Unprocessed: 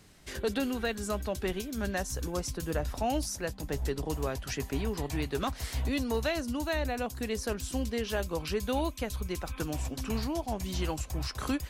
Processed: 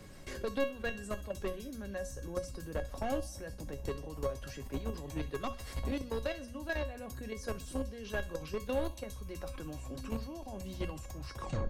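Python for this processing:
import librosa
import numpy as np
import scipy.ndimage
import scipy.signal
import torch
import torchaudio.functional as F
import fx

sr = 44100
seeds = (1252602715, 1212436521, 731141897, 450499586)

p1 = fx.tape_stop_end(x, sr, length_s=0.32)
p2 = fx.level_steps(p1, sr, step_db=15)
p3 = fx.tilt_shelf(p2, sr, db=4.0, hz=750.0)
p4 = fx.hum_notches(p3, sr, base_hz=60, count=4)
p5 = p4 + fx.echo_thinned(p4, sr, ms=65, feedback_pct=58, hz=420.0, wet_db=-20, dry=0)
p6 = 10.0 ** (-27.0 / 20.0) * np.tanh(p5 / 10.0 ** (-27.0 / 20.0))
p7 = fx.comb_fb(p6, sr, f0_hz=550.0, decay_s=0.27, harmonics='all', damping=0.0, mix_pct=90)
p8 = fx.band_squash(p7, sr, depth_pct=40)
y = p8 * librosa.db_to_amplitude(15.5)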